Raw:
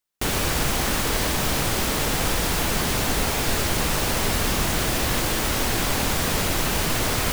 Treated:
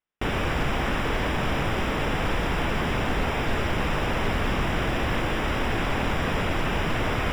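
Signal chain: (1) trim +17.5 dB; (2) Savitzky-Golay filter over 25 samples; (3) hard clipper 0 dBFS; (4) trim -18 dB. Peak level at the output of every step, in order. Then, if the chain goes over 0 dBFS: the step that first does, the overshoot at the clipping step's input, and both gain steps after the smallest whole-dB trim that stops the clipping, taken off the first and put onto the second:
+8.0 dBFS, +6.5 dBFS, 0.0 dBFS, -18.0 dBFS; step 1, 6.5 dB; step 1 +10.5 dB, step 4 -11 dB

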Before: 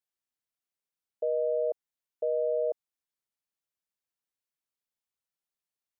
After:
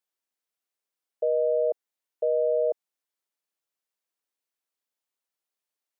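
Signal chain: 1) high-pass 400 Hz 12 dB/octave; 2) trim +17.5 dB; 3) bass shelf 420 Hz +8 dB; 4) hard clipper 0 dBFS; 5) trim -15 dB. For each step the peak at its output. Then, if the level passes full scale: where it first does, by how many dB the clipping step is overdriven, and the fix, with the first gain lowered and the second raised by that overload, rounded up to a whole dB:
-23.0 dBFS, -5.5 dBFS, -2.5 dBFS, -2.5 dBFS, -17.5 dBFS; nothing clips

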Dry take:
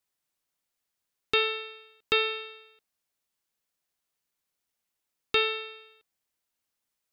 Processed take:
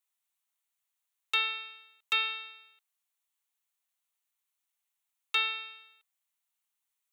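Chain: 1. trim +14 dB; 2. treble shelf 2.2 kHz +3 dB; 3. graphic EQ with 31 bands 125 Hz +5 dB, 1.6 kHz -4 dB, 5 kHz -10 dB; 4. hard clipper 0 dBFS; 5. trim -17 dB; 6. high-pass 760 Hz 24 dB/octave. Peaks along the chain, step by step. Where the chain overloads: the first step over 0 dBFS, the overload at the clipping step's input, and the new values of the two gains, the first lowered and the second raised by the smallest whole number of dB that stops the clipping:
+4.0 dBFS, +5.0 dBFS, +4.5 dBFS, 0.0 dBFS, -17.0 dBFS, -15.5 dBFS; step 1, 4.5 dB; step 1 +9 dB, step 5 -12 dB

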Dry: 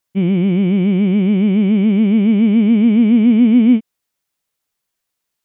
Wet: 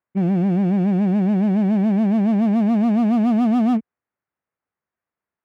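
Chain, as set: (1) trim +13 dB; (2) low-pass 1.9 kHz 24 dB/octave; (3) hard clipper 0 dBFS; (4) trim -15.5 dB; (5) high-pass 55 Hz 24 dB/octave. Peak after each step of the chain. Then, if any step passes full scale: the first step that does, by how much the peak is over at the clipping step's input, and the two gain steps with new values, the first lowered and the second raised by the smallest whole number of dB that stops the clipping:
+9.0 dBFS, +9.0 dBFS, 0.0 dBFS, -15.5 dBFS, -11.5 dBFS; step 1, 9.0 dB; step 1 +4 dB, step 4 -6.5 dB

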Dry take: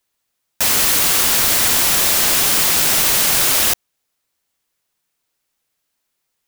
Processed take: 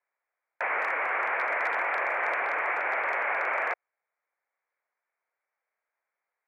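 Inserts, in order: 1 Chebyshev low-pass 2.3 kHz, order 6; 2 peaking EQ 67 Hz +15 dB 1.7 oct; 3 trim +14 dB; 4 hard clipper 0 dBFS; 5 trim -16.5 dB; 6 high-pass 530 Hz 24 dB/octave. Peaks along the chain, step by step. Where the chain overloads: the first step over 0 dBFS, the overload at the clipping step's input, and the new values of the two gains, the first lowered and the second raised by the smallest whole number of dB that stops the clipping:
-12.5 dBFS, -10.0 dBFS, +4.0 dBFS, 0.0 dBFS, -16.5 dBFS, -17.0 dBFS; step 3, 4.0 dB; step 3 +10 dB, step 5 -12.5 dB

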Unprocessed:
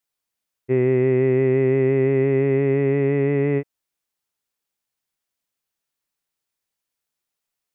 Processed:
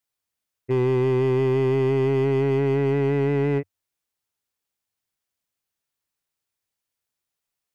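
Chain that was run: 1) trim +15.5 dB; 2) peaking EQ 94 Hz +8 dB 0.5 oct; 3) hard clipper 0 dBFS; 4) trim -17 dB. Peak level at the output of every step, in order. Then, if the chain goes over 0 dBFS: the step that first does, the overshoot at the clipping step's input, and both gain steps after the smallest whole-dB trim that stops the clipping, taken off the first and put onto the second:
+5.5 dBFS, +5.5 dBFS, 0.0 dBFS, -17.0 dBFS; step 1, 5.5 dB; step 1 +9.5 dB, step 4 -11 dB

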